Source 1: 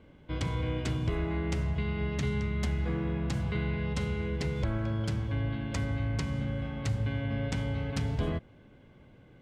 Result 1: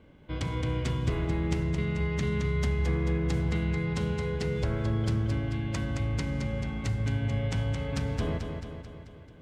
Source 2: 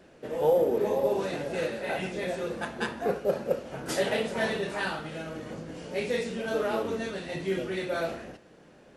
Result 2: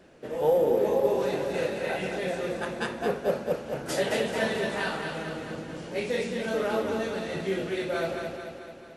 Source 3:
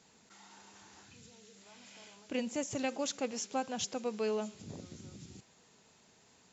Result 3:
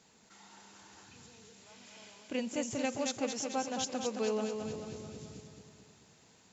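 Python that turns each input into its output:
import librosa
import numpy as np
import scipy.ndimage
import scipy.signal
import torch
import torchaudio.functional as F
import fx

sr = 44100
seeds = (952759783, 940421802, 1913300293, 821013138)

y = fx.echo_feedback(x, sr, ms=219, feedback_pct=57, wet_db=-6.0)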